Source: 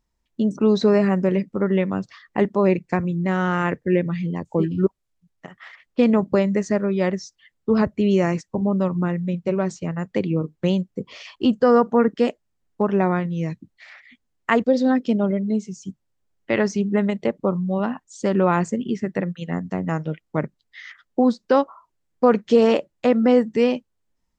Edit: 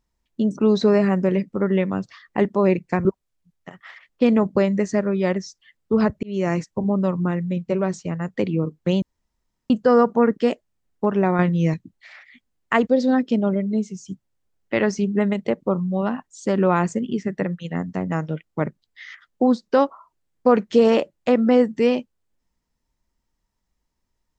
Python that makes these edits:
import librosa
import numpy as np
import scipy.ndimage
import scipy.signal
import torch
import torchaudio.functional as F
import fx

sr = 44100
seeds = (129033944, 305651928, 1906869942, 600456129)

y = fx.edit(x, sr, fx.cut(start_s=3.05, length_s=1.77),
    fx.fade_in_span(start_s=8.0, length_s=0.3),
    fx.room_tone_fill(start_s=10.79, length_s=0.68),
    fx.clip_gain(start_s=13.16, length_s=0.35, db=5.5), tone=tone)